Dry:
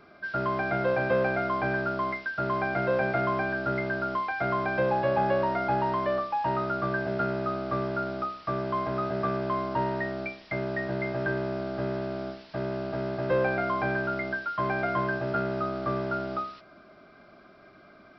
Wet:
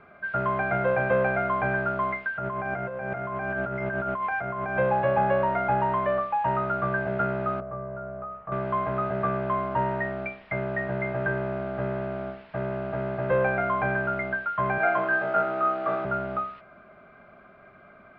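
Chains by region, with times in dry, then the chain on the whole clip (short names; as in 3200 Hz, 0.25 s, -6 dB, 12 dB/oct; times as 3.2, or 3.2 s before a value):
2.35–4.78 negative-ratio compressor -32 dBFS + decimation joined by straight lines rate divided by 6×
7.6–8.52 LPF 1000 Hz + compressor 5:1, threshold -36 dBFS + doubler 17 ms -4 dB
14.78–16.05 HPF 300 Hz + flutter echo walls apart 3.7 m, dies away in 0.56 s
whole clip: LPF 2600 Hz 24 dB/oct; bell 310 Hz -10.5 dB 0.49 oct; gain +3 dB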